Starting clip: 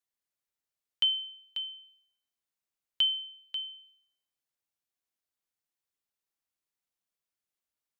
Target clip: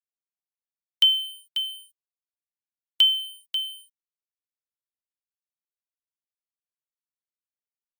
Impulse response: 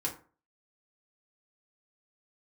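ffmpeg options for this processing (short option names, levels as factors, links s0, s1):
-af "aeval=exprs='sgn(val(0))*max(abs(val(0))-0.001,0)':c=same,highpass=f=230:w=0.5412,highpass=f=230:w=1.3066,aemphasis=mode=production:type=riaa,volume=1.58" -ar 44100 -c:a libmp3lame -b:a 112k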